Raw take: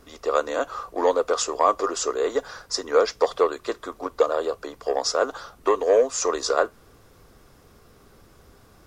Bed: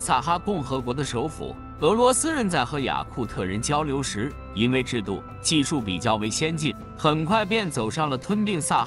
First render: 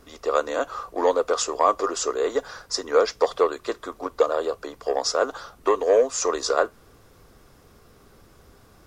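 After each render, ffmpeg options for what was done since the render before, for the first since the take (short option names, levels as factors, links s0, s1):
-af anull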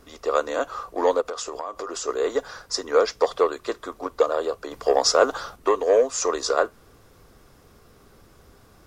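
-filter_complex "[0:a]asplit=3[s0][s1][s2];[s0]afade=t=out:st=1.2:d=0.02[s3];[s1]acompressor=threshold=0.0447:ratio=10:attack=3.2:release=140:knee=1:detection=peak,afade=t=in:st=1.2:d=0.02,afade=t=out:st=2.07:d=0.02[s4];[s2]afade=t=in:st=2.07:d=0.02[s5];[s3][s4][s5]amix=inputs=3:normalize=0,asettb=1/sr,asplit=3[s6][s7][s8];[s6]atrim=end=4.714[s9];[s7]atrim=start=4.71:end=5.56,asetpts=PTS-STARTPTS,afade=t=in:d=0.004:c=qsin,afade=t=out:st=0.846:d=0.004:c=qsin,acontrast=33[s10];[s8]atrim=start=5.556[s11];[s9][s10]acrossfade=d=0.004:c1=hsin:c2=qsin[s12];[s12][s11]acrossfade=d=0.004:c1=qsin:c2=hsin"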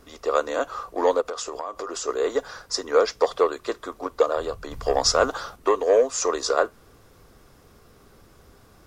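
-filter_complex "[0:a]asplit=3[s0][s1][s2];[s0]afade=t=out:st=4.36:d=0.02[s3];[s1]asubboost=boost=6.5:cutoff=150,afade=t=in:st=4.36:d=0.02,afade=t=out:st=5.28:d=0.02[s4];[s2]afade=t=in:st=5.28:d=0.02[s5];[s3][s4][s5]amix=inputs=3:normalize=0"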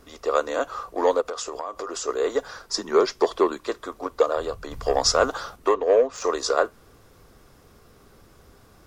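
-filter_complex "[0:a]asettb=1/sr,asplit=3[s0][s1][s2];[s0]atrim=end=2.594[s3];[s1]atrim=start=2.59:end=3.67,asetpts=PTS-STARTPTS,afade=t=in:d=0.004:c=qsin,afade=t=out:st=1.076:d=0.004:c=qsin,afreqshift=-60[s4];[s2]atrim=start=3.666[s5];[s3][s4]acrossfade=d=0.004:c1=hsin:c2=qsin[s6];[s6][s5]acrossfade=d=0.004:c1=qsin:c2=hsin,asettb=1/sr,asplit=3[s7][s8][s9];[s7]atrim=end=5.744[s10];[s8]atrim=start=5.74:end=6.24,asetpts=PTS-STARTPTS,afade=t=in:d=0.004:c=qsin,afade=t=out:st=0.496:d=0.004:c=qsin,adynamicsmooth=sensitivity=1:basefreq=3000[s11];[s9]atrim=start=6.236[s12];[s10][s11]acrossfade=d=0.004:c1=hsin:c2=qsin[s13];[s13][s12]acrossfade=d=0.004:c1=qsin:c2=hsin"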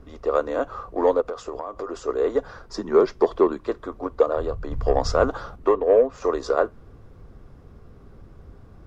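-af "lowpass=f=1300:p=1,lowshelf=f=230:g=11"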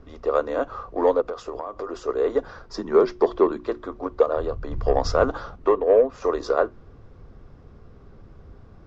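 -af "lowpass=f=6500:w=0.5412,lowpass=f=6500:w=1.3066,bandreject=f=60:t=h:w=6,bandreject=f=120:t=h:w=6,bandreject=f=180:t=h:w=6,bandreject=f=240:t=h:w=6,bandreject=f=300:t=h:w=6,bandreject=f=360:t=h:w=6"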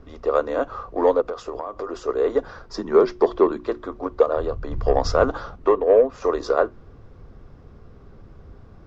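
-af "volume=1.19"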